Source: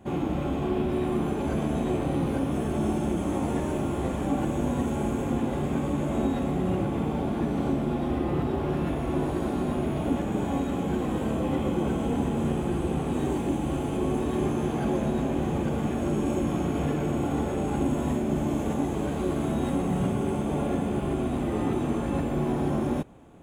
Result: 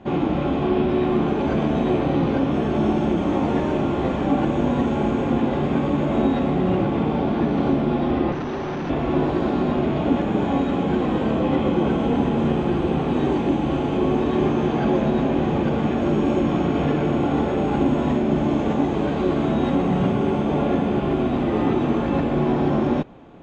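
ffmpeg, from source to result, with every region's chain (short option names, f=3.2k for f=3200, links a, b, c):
-filter_complex "[0:a]asettb=1/sr,asplit=3[a][b][c];[a]atrim=end=8.324[d];[b]atrim=start=8.32:end=8.9,asetpts=PTS-STARTPTS,afade=t=in:d=0.004:c=qsin,afade=t=out:st=0.576:d=0.004:c=qsin,highpass=78,aeval=exprs='val(0)+0.00224*sin(2*PI*6000*n/s)':c=same,asoftclip=type=hard:threshold=-31.5dB[e];[c]atrim=start=8.896[f];[d][e]acrossfade=d=0.004:c1=hsin:c2=qsin[g];[g][f]acrossfade=d=0.004:c1=qsin:c2=hsin,lowpass=f=4.9k:w=0.5412,lowpass=f=4.9k:w=1.3066,equalizer=f=67:t=o:w=1.8:g=-6.5,volume=7.5dB"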